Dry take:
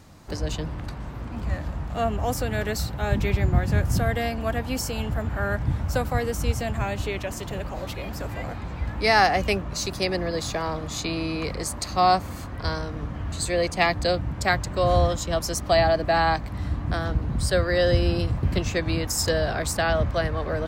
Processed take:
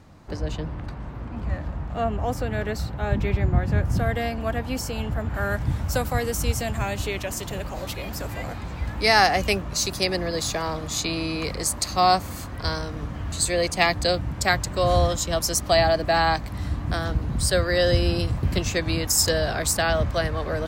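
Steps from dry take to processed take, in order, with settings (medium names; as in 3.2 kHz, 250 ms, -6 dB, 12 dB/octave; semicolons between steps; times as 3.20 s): treble shelf 4.1 kHz -10.5 dB, from 3.99 s -3 dB, from 5.34 s +8 dB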